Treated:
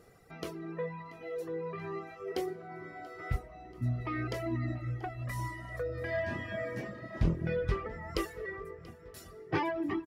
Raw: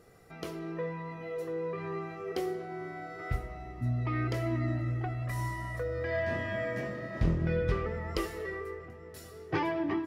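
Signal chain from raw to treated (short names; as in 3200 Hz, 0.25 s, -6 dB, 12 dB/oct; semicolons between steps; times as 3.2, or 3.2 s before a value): reverb removal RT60 1.3 s; on a send: feedback echo 0.684 s, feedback 57%, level -21 dB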